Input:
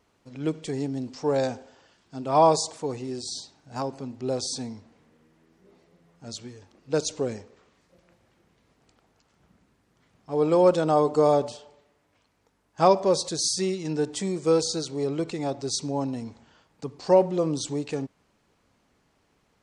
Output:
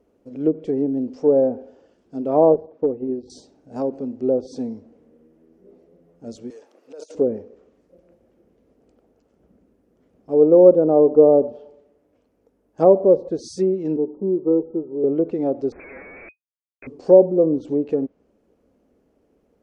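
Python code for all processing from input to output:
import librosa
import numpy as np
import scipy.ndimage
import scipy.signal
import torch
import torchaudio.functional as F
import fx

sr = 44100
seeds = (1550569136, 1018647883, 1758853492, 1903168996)

y = fx.chain(x, sr, fx.clip_hard(threshold_db=-23.5),
    fx.transient(attack_db=5, sustain_db=-7),
    fx.spacing_loss(db_at_10k=36), at=(2.54, 3.3))
y = fx.chain(y, sr, fx.highpass(hz=790.0, slope=12),
    fx.over_compress(threshold_db=-42.0, ratio=-1.0), at=(6.5, 7.15))
y = fx.chain(y, sr, fx.cheby_ripple(hz=1300.0, ripple_db=9),
    fx.comb(ms=5.3, depth=0.41), at=(13.96, 15.04))
y = fx.chain(y, sr, fx.highpass(hz=260.0, slope=6),
    fx.schmitt(flips_db=-40.0),
    fx.freq_invert(carrier_hz=2500), at=(15.72, 16.87))
y = fx.graphic_eq(y, sr, hz=(125, 250, 500, 1000, 2000, 4000, 8000), db=(-7, 7, 10, -8, -7, -11, -9))
y = fx.env_lowpass_down(y, sr, base_hz=990.0, full_db=-15.5)
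y = fx.peak_eq(y, sr, hz=62.0, db=4.0, octaves=1.1)
y = y * librosa.db_to_amplitude(1.0)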